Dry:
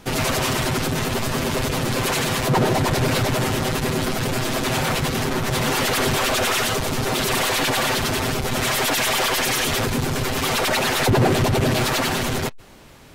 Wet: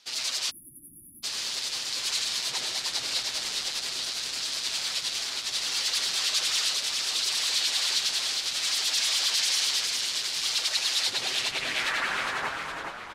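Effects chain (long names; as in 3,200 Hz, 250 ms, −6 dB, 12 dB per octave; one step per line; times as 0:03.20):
band-pass filter sweep 4,500 Hz → 720 Hz, 0:10.98–0:12.89
on a send: echo with shifted repeats 413 ms, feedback 50%, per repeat −87 Hz, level −4 dB
on the sum: dynamic equaliser 8,400 Hz, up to +6 dB, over −53 dBFS, Q 0.93
time-frequency box erased 0:00.50–0:01.24, 350–9,700 Hz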